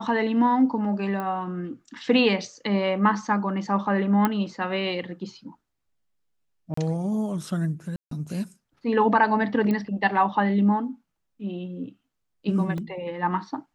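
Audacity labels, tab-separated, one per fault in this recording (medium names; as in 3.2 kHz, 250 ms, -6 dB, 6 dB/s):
1.200000	1.200000	pop -19 dBFS
4.250000	4.250000	pop -9 dBFS
6.740000	6.770000	dropout 34 ms
7.960000	8.110000	dropout 153 ms
9.710000	9.710000	pop -16 dBFS
12.780000	12.780000	dropout 2 ms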